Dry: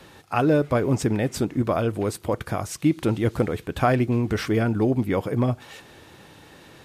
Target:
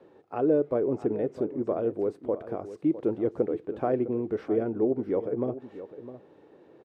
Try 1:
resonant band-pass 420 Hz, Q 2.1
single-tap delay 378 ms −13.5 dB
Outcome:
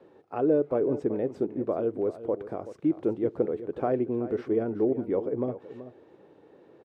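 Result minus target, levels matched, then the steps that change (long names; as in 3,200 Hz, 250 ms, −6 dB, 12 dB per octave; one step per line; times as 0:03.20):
echo 279 ms early
change: single-tap delay 657 ms −13.5 dB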